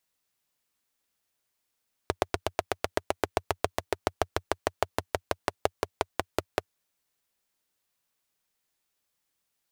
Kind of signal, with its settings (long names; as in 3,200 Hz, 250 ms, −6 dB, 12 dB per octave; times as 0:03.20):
pulse-train model of a single-cylinder engine, changing speed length 4.56 s, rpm 1,000, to 600, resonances 91/420/620 Hz